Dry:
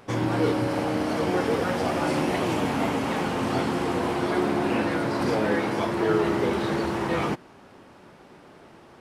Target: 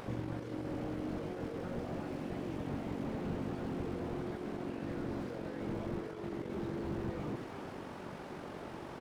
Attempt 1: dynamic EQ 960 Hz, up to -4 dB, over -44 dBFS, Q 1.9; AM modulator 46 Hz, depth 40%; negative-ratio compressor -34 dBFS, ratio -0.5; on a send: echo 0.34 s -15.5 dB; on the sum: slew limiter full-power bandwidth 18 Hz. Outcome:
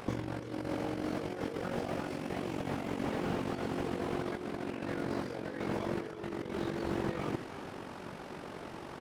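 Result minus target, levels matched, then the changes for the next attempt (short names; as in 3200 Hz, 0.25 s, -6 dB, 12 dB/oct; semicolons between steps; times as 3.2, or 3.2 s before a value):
slew limiter: distortion -10 dB
change: slew limiter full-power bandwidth 6 Hz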